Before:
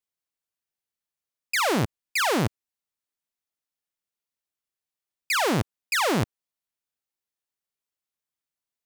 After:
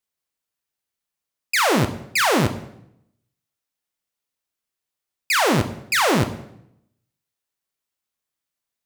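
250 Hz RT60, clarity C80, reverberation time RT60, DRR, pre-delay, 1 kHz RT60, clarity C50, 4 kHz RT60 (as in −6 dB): 0.95 s, 14.5 dB, 0.75 s, 7.5 dB, 9 ms, 0.70 s, 12.0 dB, 0.65 s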